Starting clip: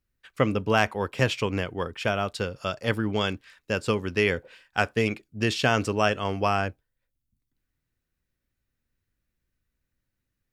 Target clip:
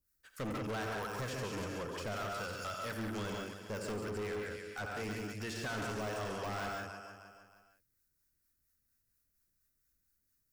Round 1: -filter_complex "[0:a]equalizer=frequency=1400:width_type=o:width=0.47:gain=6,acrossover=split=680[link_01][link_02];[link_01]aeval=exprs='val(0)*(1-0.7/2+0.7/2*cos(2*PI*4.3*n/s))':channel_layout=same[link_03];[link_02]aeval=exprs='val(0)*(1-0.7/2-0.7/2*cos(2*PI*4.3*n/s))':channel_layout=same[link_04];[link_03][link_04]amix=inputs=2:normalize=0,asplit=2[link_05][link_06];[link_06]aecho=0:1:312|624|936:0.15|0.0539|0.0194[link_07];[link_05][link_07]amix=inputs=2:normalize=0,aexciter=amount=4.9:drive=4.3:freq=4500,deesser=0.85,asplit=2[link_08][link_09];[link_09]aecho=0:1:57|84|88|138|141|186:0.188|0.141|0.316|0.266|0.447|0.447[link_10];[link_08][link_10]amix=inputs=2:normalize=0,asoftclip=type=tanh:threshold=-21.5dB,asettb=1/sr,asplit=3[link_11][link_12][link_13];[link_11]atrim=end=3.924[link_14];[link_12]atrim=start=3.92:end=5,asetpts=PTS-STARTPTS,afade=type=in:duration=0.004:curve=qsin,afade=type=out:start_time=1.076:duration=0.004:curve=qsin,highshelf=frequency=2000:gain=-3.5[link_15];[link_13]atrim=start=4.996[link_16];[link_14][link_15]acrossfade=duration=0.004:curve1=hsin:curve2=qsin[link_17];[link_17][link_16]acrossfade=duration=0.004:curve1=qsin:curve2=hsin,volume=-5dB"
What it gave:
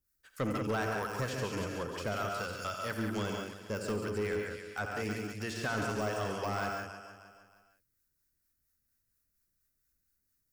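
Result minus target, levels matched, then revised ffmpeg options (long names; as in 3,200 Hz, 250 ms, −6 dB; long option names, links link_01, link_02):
soft clipping: distortion −7 dB
-filter_complex "[0:a]equalizer=frequency=1400:width_type=o:width=0.47:gain=6,acrossover=split=680[link_01][link_02];[link_01]aeval=exprs='val(0)*(1-0.7/2+0.7/2*cos(2*PI*4.3*n/s))':channel_layout=same[link_03];[link_02]aeval=exprs='val(0)*(1-0.7/2-0.7/2*cos(2*PI*4.3*n/s))':channel_layout=same[link_04];[link_03][link_04]amix=inputs=2:normalize=0,asplit=2[link_05][link_06];[link_06]aecho=0:1:312|624|936:0.15|0.0539|0.0194[link_07];[link_05][link_07]amix=inputs=2:normalize=0,aexciter=amount=4.9:drive=4.3:freq=4500,deesser=0.85,asplit=2[link_08][link_09];[link_09]aecho=0:1:57|84|88|138|141|186:0.188|0.141|0.316|0.266|0.447|0.447[link_10];[link_08][link_10]amix=inputs=2:normalize=0,asoftclip=type=tanh:threshold=-30.5dB,asettb=1/sr,asplit=3[link_11][link_12][link_13];[link_11]atrim=end=3.924[link_14];[link_12]atrim=start=3.92:end=5,asetpts=PTS-STARTPTS,afade=type=in:duration=0.004:curve=qsin,afade=type=out:start_time=1.076:duration=0.004:curve=qsin,highshelf=frequency=2000:gain=-3.5[link_15];[link_13]atrim=start=4.996[link_16];[link_14][link_15]acrossfade=duration=0.004:curve1=hsin:curve2=qsin[link_17];[link_17][link_16]acrossfade=duration=0.004:curve1=qsin:curve2=hsin,volume=-5dB"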